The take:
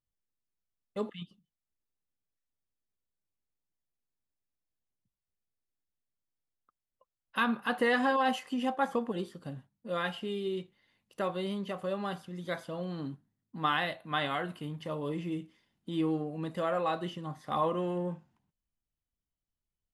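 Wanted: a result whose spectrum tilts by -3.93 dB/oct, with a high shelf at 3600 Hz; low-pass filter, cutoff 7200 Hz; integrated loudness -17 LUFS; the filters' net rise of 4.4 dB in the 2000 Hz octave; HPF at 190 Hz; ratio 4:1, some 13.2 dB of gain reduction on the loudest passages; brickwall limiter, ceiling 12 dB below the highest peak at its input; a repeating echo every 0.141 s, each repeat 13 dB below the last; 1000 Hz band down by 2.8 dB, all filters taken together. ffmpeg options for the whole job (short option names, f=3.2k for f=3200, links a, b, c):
-af "highpass=190,lowpass=7.2k,equalizer=f=1k:t=o:g=-5.5,equalizer=f=2k:t=o:g=8.5,highshelf=f=3.6k:g=-4.5,acompressor=threshold=-37dB:ratio=4,alimiter=level_in=8dB:limit=-24dB:level=0:latency=1,volume=-8dB,aecho=1:1:141|282|423:0.224|0.0493|0.0108,volume=26dB"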